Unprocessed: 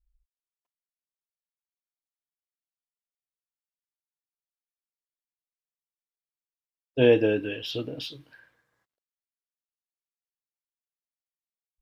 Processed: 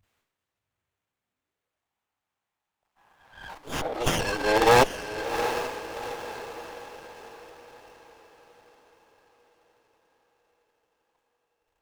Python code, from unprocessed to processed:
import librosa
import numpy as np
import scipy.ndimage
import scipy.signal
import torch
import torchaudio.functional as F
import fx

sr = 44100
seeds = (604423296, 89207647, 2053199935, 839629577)

p1 = np.flip(x).copy()
p2 = fx.dynamic_eq(p1, sr, hz=570.0, q=1.2, threshold_db=-33.0, ratio=4.0, max_db=-5)
p3 = fx.transient(p2, sr, attack_db=-3, sustain_db=11)
p4 = (np.mod(10.0 ** (15.5 / 20.0) * p3 + 1.0, 2.0) - 1.0) / 10.0 ** (15.5 / 20.0)
p5 = p3 + F.gain(torch.from_numpy(p4), -8.0).numpy()
p6 = fx.filter_sweep_highpass(p5, sr, from_hz=84.0, to_hz=810.0, start_s=0.96, end_s=1.87, q=5.1)
p7 = p6 + fx.echo_diffused(p6, sr, ms=742, feedback_pct=46, wet_db=-9, dry=0)
p8 = fx.running_max(p7, sr, window=9)
y = F.gain(torch.from_numpy(p8), 7.5).numpy()